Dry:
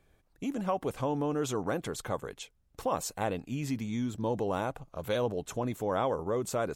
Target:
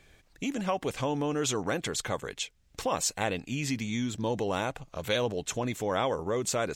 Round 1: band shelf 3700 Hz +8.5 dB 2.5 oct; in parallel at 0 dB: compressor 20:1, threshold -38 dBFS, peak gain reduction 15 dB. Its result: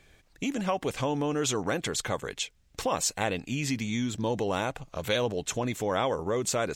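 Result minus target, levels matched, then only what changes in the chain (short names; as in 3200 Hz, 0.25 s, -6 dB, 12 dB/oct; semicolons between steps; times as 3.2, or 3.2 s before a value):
compressor: peak gain reduction -8 dB
change: compressor 20:1, threshold -46.5 dBFS, peak gain reduction 23 dB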